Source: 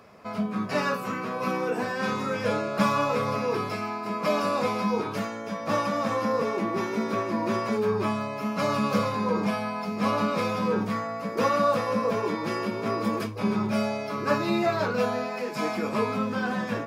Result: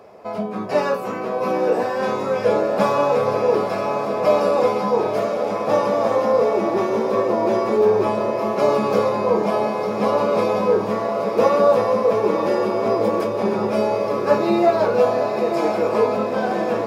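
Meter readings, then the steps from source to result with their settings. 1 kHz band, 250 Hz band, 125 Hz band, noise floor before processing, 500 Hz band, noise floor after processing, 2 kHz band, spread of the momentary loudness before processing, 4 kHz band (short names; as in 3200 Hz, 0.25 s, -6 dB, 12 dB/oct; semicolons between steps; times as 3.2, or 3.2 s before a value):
+6.0 dB, +3.0 dB, +1.0 dB, -34 dBFS, +11.0 dB, -26 dBFS, +1.0 dB, 5 LU, +1.0 dB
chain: band shelf 550 Hz +10 dB; on a send: diffused feedback echo 0.948 s, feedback 68%, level -7.5 dB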